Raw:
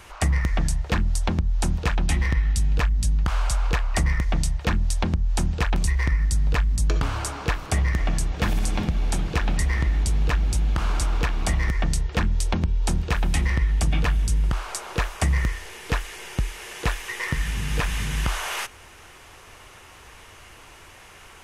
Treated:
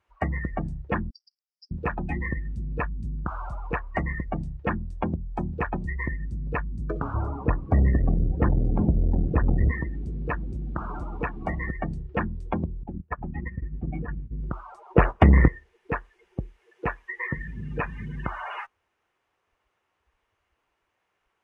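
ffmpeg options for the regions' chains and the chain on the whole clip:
ffmpeg -i in.wav -filter_complex "[0:a]asettb=1/sr,asplit=3[link_01][link_02][link_03];[link_01]atrim=end=1.104[link_04];[link_02]atrim=start=1.1:end=1.71,asetpts=PTS-STARTPTS,afade=type=in:duration=0.004:curve=qsin,afade=type=out:start_time=0.606:duration=0.004:curve=qsin,aeval=exprs='0.251*sin(PI/2*3.55*val(0)/0.251)':channel_layout=same,asuperpass=centerf=5100:order=8:qfactor=4.8,agate=range=-9dB:threshold=-48dB:ratio=16:release=100:detection=peak[link_05];[link_03]atrim=start=1.706[link_06];[link_04][link_05]acrossfade=duration=0.004:curve1=hsin:curve2=qsin[link_07];[link_07][link_06]acrossfade=duration=0.004:curve1=qsin:curve2=hsin,asettb=1/sr,asplit=3[link_08][link_09][link_10];[link_08]atrim=end=7.144[link_11];[link_09]atrim=start=7.14:end=9.71,asetpts=PTS-STARTPTS,afade=type=in:duration=0.004:curve=qsin,afade=type=out:start_time=2.566:duration=0.004:curve=qsin,aemphasis=mode=reproduction:type=bsi,aeval=exprs='clip(val(0),-1,0.316)':channel_layout=same[link_12];[link_10]atrim=start=9.706[link_13];[link_11][link_12]acrossfade=duration=0.004:curve1=hsin:curve2=qsin[link_14];[link_14][link_13]acrossfade=duration=0.004:curve1=qsin:curve2=hsin,asettb=1/sr,asplit=3[link_15][link_16][link_17];[link_15]atrim=end=12.834[link_18];[link_16]atrim=start=12.83:end=14.4,asetpts=PTS-STARTPTS,afade=type=in:duration=0.004:curve=qsin,afade=type=out:start_time=1.566:duration=0.004:curve=qsin,agate=range=-18dB:threshold=-21dB:ratio=16:release=100:detection=peak,lowpass=frequency=2700:width=0.5412,lowpass=frequency=2700:width=1.3066[link_19];[link_17]atrim=start=14.396[link_20];[link_18][link_19]acrossfade=duration=0.004:curve1=hsin:curve2=qsin[link_21];[link_21][link_20]acrossfade=duration=0.004:curve1=qsin:curve2=hsin,asettb=1/sr,asplit=3[link_22][link_23][link_24];[link_22]atrim=end=14.944[link_25];[link_23]atrim=start=14.94:end=15.48,asetpts=PTS-STARTPTS,afade=type=in:duration=0.004:curve=qsin,afade=type=out:start_time=0.536:duration=0.004:curve=qsin,agate=range=-11dB:threshold=-34dB:ratio=16:release=100:detection=peak,lowshelf=frequency=440:gain=10.5,acontrast=86[link_26];[link_24]atrim=start=15.476[link_27];[link_25][link_26]acrossfade=duration=0.004:curve1=hsin:curve2=qsin[link_28];[link_28][link_27]acrossfade=duration=0.004:curve1=qsin:curve2=hsin,lowpass=frequency=1700:poles=1,afftdn=noise_reduction=29:noise_floor=-29,highpass=frequency=280:poles=1,volume=3.5dB" out.wav

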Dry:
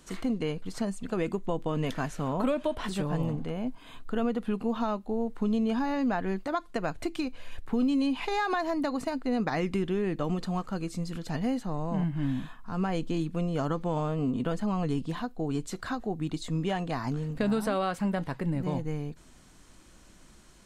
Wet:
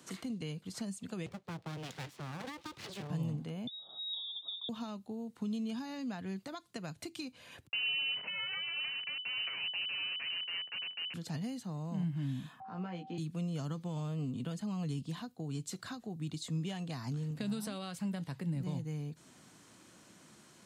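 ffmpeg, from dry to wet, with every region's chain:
ffmpeg -i in.wav -filter_complex "[0:a]asettb=1/sr,asplit=3[link_01][link_02][link_03];[link_01]atrim=end=1.264[link_04];[link_02]atrim=start=1.26:end=3.1,asetpts=PTS-STARTPTS,afade=type=in:duration=0.004:curve=qsin,afade=type=out:start_time=1.836:duration=0.004:curve=qsin,highpass=140,lowpass=3900,aeval=exprs='abs(val(0))':channel_layout=same[link_05];[link_03]atrim=start=3.096[link_06];[link_04][link_05]acrossfade=duration=0.004:curve1=hsin:curve2=qsin[link_07];[link_07][link_06]acrossfade=duration=0.004:curve1=qsin:curve2=hsin,asettb=1/sr,asplit=3[link_08][link_09][link_10];[link_08]atrim=end=3.674[link_11];[link_09]atrim=start=3.67:end=4.69,asetpts=PTS-STARTPTS,afade=type=in:duration=0.004:curve=qsin,afade=type=out:start_time=1.016:duration=0.004:curve=qsin,acompressor=threshold=-36dB:ratio=12:attack=3.2:release=140:knee=1:detection=peak,asuperstop=centerf=1200:order=12:qfactor=0.52,lowpass=frequency=3200:width_type=q:width=0.5098,lowpass=frequency=3200:width_type=q:width=0.6013,lowpass=frequency=3200:width_type=q:width=0.9,lowpass=frequency=3200:width_type=q:width=2.563,afreqshift=-3800[link_12];[link_10]atrim=start=4.686[link_13];[link_11][link_12]acrossfade=duration=0.004:curve1=hsin:curve2=qsin[link_14];[link_14][link_13]acrossfade=duration=0.004:curve1=qsin:curve2=hsin,asettb=1/sr,asplit=3[link_15][link_16][link_17];[link_15]atrim=end=7.674[link_18];[link_16]atrim=start=7.67:end=11.14,asetpts=PTS-STARTPTS,afade=type=in:duration=0.004:curve=qsin,afade=type=out:start_time=3.466:duration=0.004:curve=qsin,acrusher=bits=3:dc=4:mix=0:aa=0.000001,lowpass=frequency=2600:width_type=q:width=0.5098,lowpass=frequency=2600:width_type=q:width=0.6013,lowpass=frequency=2600:width_type=q:width=0.9,lowpass=frequency=2600:width_type=q:width=2.563,afreqshift=-3000[link_19];[link_17]atrim=start=11.136[link_20];[link_18][link_19]acrossfade=duration=0.004:curve1=hsin:curve2=qsin[link_21];[link_21][link_20]acrossfade=duration=0.004:curve1=qsin:curve2=hsin,asettb=1/sr,asplit=3[link_22][link_23][link_24];[link_22]atrim=end=12.604[link_25];[link_23]atrim=start=12.6:end=13.18,asetpts=PTS-STARTPTS,afade=type=in:duration=0.004:curve=qsin,afade=type=out:start_time=0.576:duration=0.004:curve=qsin,aeval=exprs='val(0)+0.00794*sin(2*PI*770*n/s)':channel_layout=same,highpass=260,lowpass=2200,asplit=2[link_26][link_27];[link_27]adelay=17,volume=-3dB[link_28];[link_26][link_28]amix=inputs=2:normalize=0,atrim=end_sample=25578[link_29];[link_24]atrim=start=13.176[link_30];[link_25][link_29]acrossfade=duration=0.004:curve1=hsin:curve2=qsin[link_31];[link_31][link_30]acrossfade=duration=0.004:curve1=qsin:curve2=hsin,highpass=frequency=110:width=0.5412,highpass=frequency=110:width=1.3066,acrossover=split=170|3000[link_32][link_33][link_34];[link_33]acompressor=threshold=-48dB:ratio=3[link_35];[link_32][link_35][link_34]amix=inputs=3:normalize=0,volume=-1dB" out.wav

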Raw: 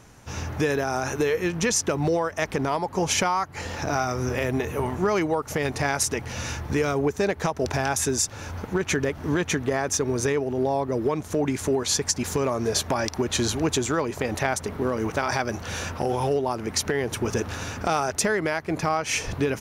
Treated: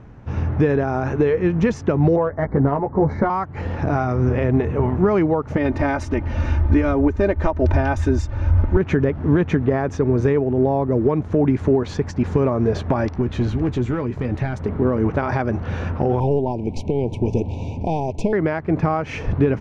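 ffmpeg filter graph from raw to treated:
ffmpeg -i in.wav -filter_complex "[0:a]asettb=1/sr,asplit=3[link_01][link_02][link_03];[link_01]atrim=end=2.164[link_04];[link_02]atrim=start=2.16:end=3.3,asetpts=PTS-STARTPTS,afade=type=in:duration=0.004:curve=qsin,afade=type=out:start_time=1.136:duration=0.004:curve=qsin,asuperstop=centerf=2900:order=20:qfactor=1.9,adynamicsmooth=sensitivity=0.5:basefreq=1700,asplit=2[link_05][link_06];[link_06]adelay=14,volume=-5.5dB[link_07];[link_05][link_07]amix=inputs=2:normalize=0,atrim=end_sample=50274[link_08];[link_03]atrim=start=3.296[link_09];[link_04][link_08]acrossfade=duration=0.004:curve1=hsin:curve2=qsin[link_10];[link_10][link_09]acrossfade=duration=0.004:curve1=qsin:curve2=hsin,asettb=1/sr,asplit=3[link_11][link_12][link_13];[link_11]atrim=end=5.564[link_14];[link_12]atrim=start=5.56:end=8.77,asetpts=PTS-STARTPTS,afade=type=in:duration=0.004:curve=qsin,afade=type=out:start_time=3.206:duration=0.004:curve=qsin,asubboost=boost=9.5:cutoff=70,aecho=1:1:3.3:0.7,atrim=end_sample=141561[link_15];[link_13]atrim=start=8.766[link_16];[link_14][link_15]acrossfade=duration=0.004:curve1=hsin:curve2=qsin[link_17];[link_17][link_16]acrossfade=duration=0.004:curve1=qsin:curve2=hsin,asettb=1/sr,asplit=3[link_18][link_19][link_20];[link_18]atrim=end=13.134[link_21];[link_19]atrim=start=13.13:end=14.57,asetpts=PTS-STARTPTS,afade=type=in:duration=0.004:curve=qsin,afade=type=out:start_time=1.436:duration=0.004:curve=qsin,equalizer=frequency=670:width=0.64:gain=-7,asoftclip=type=hard:threshold=-24dB,asplit=2[link_22][link_23];[link_23]adelay=16,volume=-11dB[link_24];[link_22][link_24]amix=inputs=2:normalize=0,atrim=end_sample=63504[link_25];[link_20]atrim=start=14.566[link_26];[link_21][link_25]acrossfade=duration=0.004:curve1=hsin:curve2=qsin[link_27];[link_27][link_26]acrossfade=duration=0.004:curve1=qsin:curve2=hsin,asettb=1/sr,asplit=3[link_28][link_29][link_30];[link_28]atrim=end=16.204[link_31];[link_29]atrim=start=16.2:end=18.33,asetpts=PTS-STARTPTS,afade=type=in:duration=0.004:curve=qsin,afade=type=out:start_time=2.126:duration=0.004:curve=qsin,equalizer=frequency=9500:width=0.69:gain=7,aeval=exprs='(tanh(5.01*val(0)+0.5)-tanh(0.5))/5.01':channel_layout=same,asuperstop=centerf=1500:order=20:qfactor=1.2[link_32];[link_30]atrim=start=18.326[link_33];[link_31][link_32]acrossfade=duration=0.004:curve1=hsin:curve2=qsin[link_34];[link_34][link_33]acrossfade=duration=0.004:curve1=qsin:curve2=hsin,lowpass=2100,lowshelf=frequency=430:gain=11.5" out.wav

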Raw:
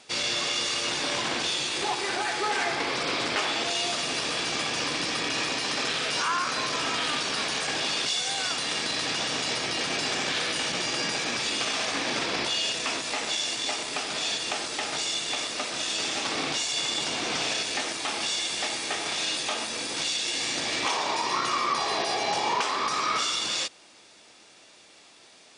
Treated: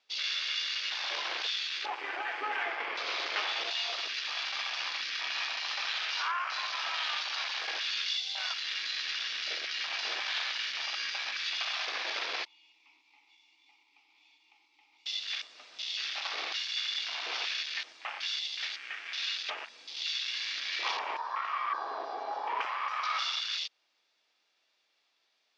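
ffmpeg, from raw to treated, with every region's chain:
ffmpeg -i in.wav -filter_complex "[0:a]asettb=1/sr,asplit=3[link_01][link_02][link_03];[link_01]atrim=end=12.454[link_04];[link_02]atrim=start=12.45:end=15.06,asetpts=PTS-STARTPTS,afade=type=in:duration=0.004:curve=qsin,afade=type=out:start_time=2.606:duration=0.004:curve=qsin,asplit=3[link_05][link_06][link_07];[link_05]bandpass=frequency=300:width_type=q:width=8,volume=0dB[link_08];[link_06]bandpass=frequency=870:width_type=q:width=8,volume=-6dB[link_09];[link_07]bandpass=frequency=2240:width_type=q:width=8,volume=-9dB[link_10];[link_08][link_09][link_10]amix=inputs=3:normalize=0,aemphasis=mode=production:type=riaa[link_11];[link_03]atrim=start=15.056[link_12];[link_04][link_11]acrossfade=duration=0.004:curve1=hsin:curve2=qsin[link_13];[link_13][link_12]acrossfade=duration=0.004:curve1=qsin:curve2=hsin,asettb=1/sr,asplit=3[link_14][link_15][link_16];[link_14]atrim=end=21.174[link_17];[link_15]atrim=start=21.17:end=22.57,asetpts=PTS-STARTPTS,afade=type=in:duration=0.004:curve=qsin,afade=type=out:start_time=1.396:duration=0.004:curve=qsin,lowpass=7600,acrossover=split=5100[link_18][link_19];[link_19]acompressor=threshold=-47dB:ratio=4:attack=1:release=60[link_20];[link_18][link_20]amix=inputs=2:normalize=0,equalizer=frequency=2700:width_type=o:width=0.52:gain=-5[link_21];[link_16]atrim=start=22.566[link_22];[link_17][link_21]acrossfade=duration=0.004:curve1=hsin:curve2=qsin[link_23];[link_23][link_22]acrossfade=duration=0.004:curve1=qsin:curve2=hsin,highpass=frequency=1100:poles=1,afwtdn=0.0251,lowpass=frequency=5300:width=0.5412,lowpass=frequency=5300:width=1.3066,volume=-2.5dB" out.wav

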